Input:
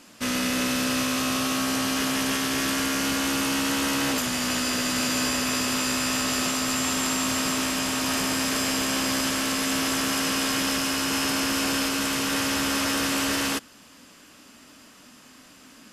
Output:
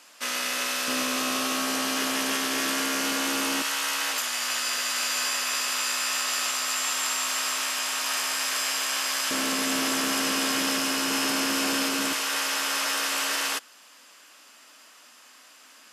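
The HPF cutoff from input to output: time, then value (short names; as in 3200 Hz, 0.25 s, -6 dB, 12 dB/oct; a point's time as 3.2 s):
670 Hz
from 0.88 s 320 Hz
from 3.62 s 900 Hz
from 9.31 s 230 Hz
from 12.13 s 670 Hz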